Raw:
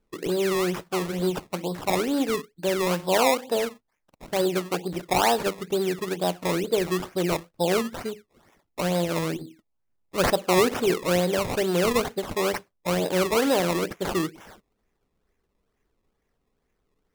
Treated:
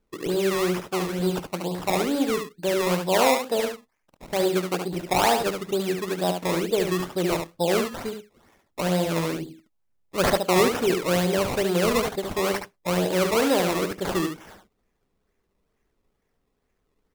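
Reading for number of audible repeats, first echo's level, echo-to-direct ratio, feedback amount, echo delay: 1, −6.0 dB, −6.0 dB, repeats not evenly spaced, 72 ms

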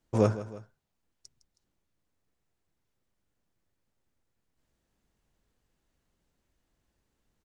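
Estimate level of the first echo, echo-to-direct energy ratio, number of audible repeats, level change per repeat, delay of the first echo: −15.0 dB, −14.0 dB, 2, −5.5 dB, 159 ms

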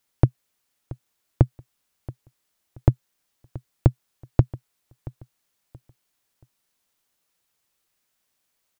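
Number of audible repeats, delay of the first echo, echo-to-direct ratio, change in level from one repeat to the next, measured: 2, 678 ms, −18.5 dB, −10.5 dB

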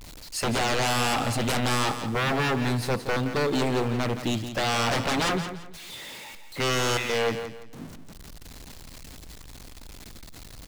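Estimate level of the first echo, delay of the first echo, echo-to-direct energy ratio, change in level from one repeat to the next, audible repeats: −10.0 dB, 171 ms, −9.5 dB, −11.5 dB, 3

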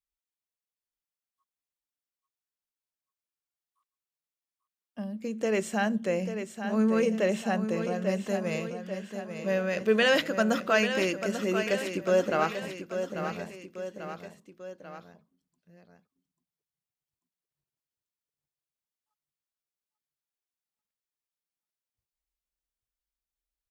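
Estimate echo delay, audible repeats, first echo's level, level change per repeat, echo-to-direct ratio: 841 ms, 3, −8.5 dB, −5.0 dB, −7.0 dB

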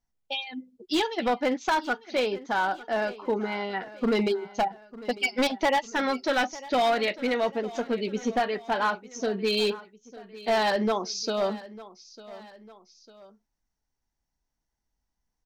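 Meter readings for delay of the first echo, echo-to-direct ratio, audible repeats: 900 ms, −17.0 dB, 2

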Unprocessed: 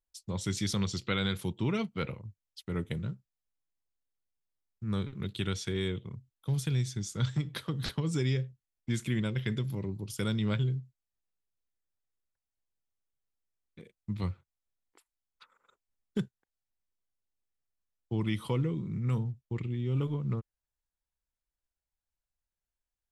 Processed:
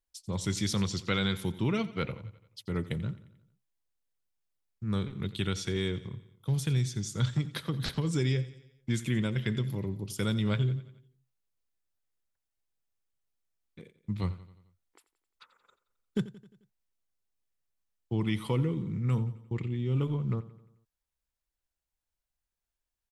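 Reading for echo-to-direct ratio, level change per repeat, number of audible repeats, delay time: −15.5 dB, −5.5 dB, 4, 88 ms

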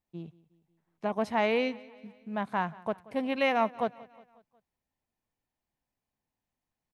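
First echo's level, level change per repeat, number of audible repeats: −21.5 dB, −5.5 dB, 3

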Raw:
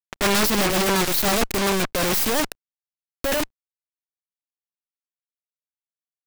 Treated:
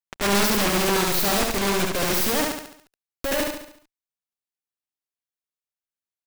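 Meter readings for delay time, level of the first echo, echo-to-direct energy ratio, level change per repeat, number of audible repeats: 70 ms, −3.0 dB, −2.0 dB, −6.5 dB, 6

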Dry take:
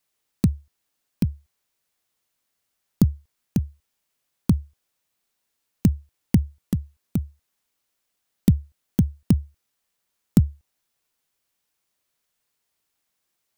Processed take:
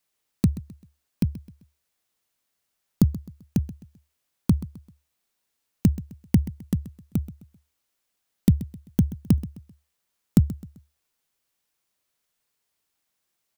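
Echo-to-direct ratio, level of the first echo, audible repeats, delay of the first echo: −16.0 dB, −16.5 dB, 3, 130 ms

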